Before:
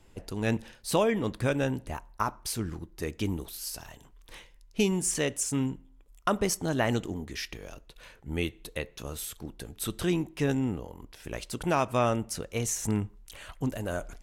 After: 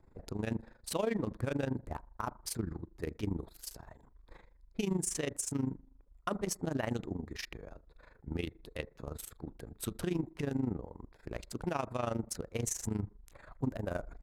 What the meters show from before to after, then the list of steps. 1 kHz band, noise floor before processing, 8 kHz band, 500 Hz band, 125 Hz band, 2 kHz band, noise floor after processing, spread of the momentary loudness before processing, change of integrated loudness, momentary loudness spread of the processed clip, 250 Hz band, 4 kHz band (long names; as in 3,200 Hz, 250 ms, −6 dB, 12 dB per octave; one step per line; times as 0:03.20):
−9.0 dB, −57 dBFS, −7.0 dB, −7.5 dB, −5.5 dB, −9.5 dB, −62 dBFS, 17 LU, −7.0 dB, 12 LU, −6.0 dB, −9.0 dB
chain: adaptive Wiener filter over 15 samples
brickwall limiter −21 dBFS, peak gain reduction 8 dB
amplitude modulation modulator 25 Hz, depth 70%